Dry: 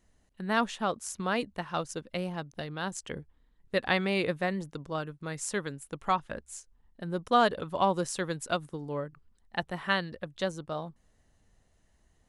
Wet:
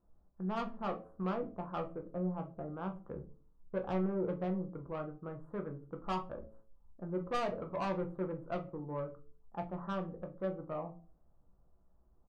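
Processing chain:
elliptic low-pass filter 1,300 Hz, stop band 50 dB
hum removal 109.6 Hz, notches 7
soft clipping −27.5 dBFS, distortion −9 dB
double-tracking delay 16 ms −11 dB
rectangular room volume 140 cubic metres, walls furnished, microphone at 0.79 metres
level −4.5 dB

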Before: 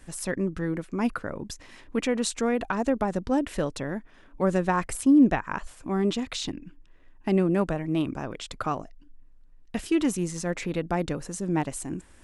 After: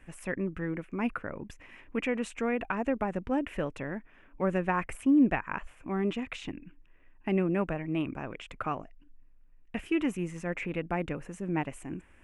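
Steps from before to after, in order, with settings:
high shelf with overshoot 3,300 Hz −9 dB, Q 3
level −5 dB

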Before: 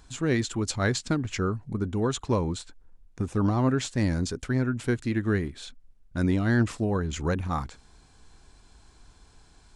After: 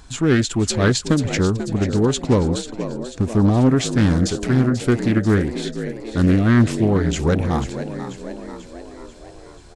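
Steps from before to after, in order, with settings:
dynamic equaliser 1,200 Hz, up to −8 dB, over −48 dBFS, Q 2.1
on a send: echo with shifted repeats 489 ms, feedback 56%, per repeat +56 Hz, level −11 dB
on the sum: highs frequency-modulated by the lows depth 0.41 ms
level +9 dB

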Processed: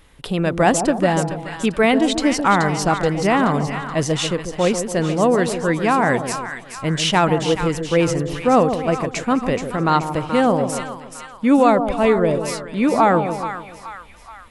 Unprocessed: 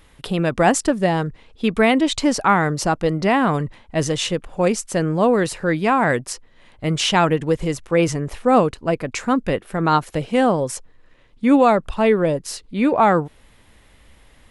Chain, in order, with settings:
echo with a time of its own for lows and highs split 1,000 Hz, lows 142 ms, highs 427 ms, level −8 dB

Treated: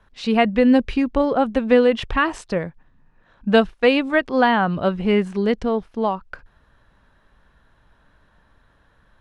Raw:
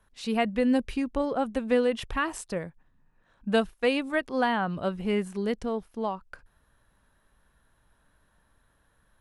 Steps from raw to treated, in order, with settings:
low-pass filter 4,600 Hz 12 dB per octave
level +9 dB

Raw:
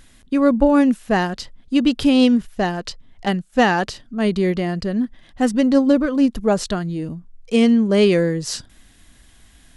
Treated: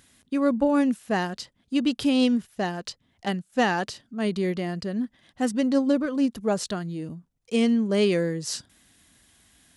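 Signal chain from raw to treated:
high-pass filter 91 Hz 12 dB per octave
high-shelf EQ 5,100 Hz +5 dB
level −7 dB

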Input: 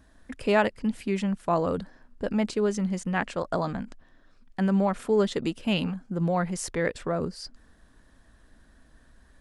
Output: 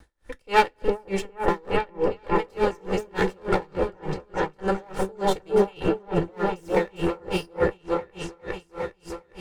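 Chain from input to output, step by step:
lower of the sound and its delayed copy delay 2.2 ms
on a send: echo whose low-pass opens from repeat to repeat 407 ms, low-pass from 750 Hz, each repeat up 1 octave, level 0 dB
on the sum: coupled-rooms reverb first 0.26 s, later 1.7 s, from −18 dB, DRR 8 dB
tremolo with a sine in dB 3.4 Hz, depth 32 dB
level +6 dB

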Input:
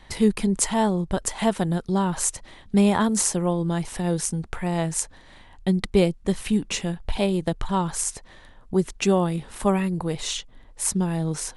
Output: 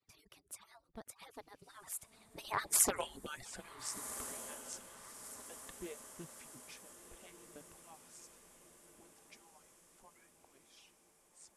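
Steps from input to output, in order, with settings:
harmonic-percussive split with one part muted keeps percussive
source passing by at 0:02.97, 48 m/s, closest 4 metres
low-shelf EQ 64 Hz −7 dB
on a send: feedback delay with all-pass diffusion 1,444 ms, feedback 54%, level −11 dB
on the sum: highs frequency-modulated by the lows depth 0.47 ms
level +5 dB

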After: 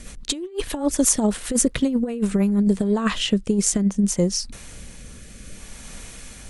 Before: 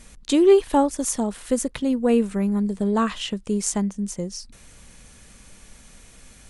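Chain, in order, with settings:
rotating-speaker cabinet horn 8 Hz, later 0.6 Hz, at 0:01.95
compressor whose output falls as the input rises −25 dBFS, ratio −0.5
level +6 dB

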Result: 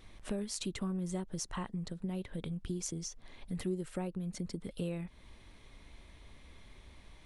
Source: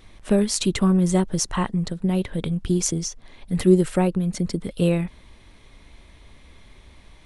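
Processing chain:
downward compressor 2.5 to 1, threshold −33 dBFS, peak gain reduction 15.5 dB
level −6.5 dB

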